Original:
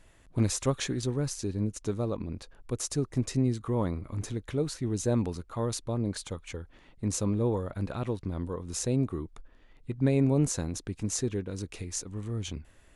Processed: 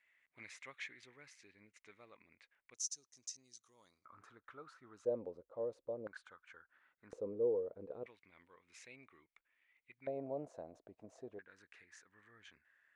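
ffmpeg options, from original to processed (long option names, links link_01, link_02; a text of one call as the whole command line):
ffmpeg -i in.wav -af "asetnsamples=nb_out_samples=441:pad=0,asendcmd='2.74 bandpass f 6000;4.05 bandpass f 1300;5.05 bandpass f 530;6.07 bandpass f 1500;7.13 bandpass f 470;8.06 bandpass f 2200;10.07 bandpass f 640;11.39 bandpass f 1700',bandpass=frequency=2100:width_type=q:width=7:csg=0" out.wav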